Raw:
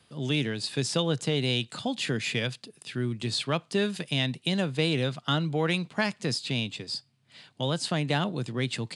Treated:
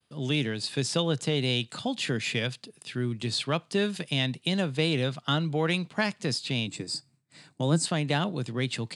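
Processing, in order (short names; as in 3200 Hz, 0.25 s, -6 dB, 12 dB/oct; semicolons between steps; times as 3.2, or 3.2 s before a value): expander -55 dBFS; 6.67–7.86 thirty-one-band EQ 160 Hz +9 dB, 315 Hz +11 dB, 3150 Hz -12 dB, 8000 Hz +11 dB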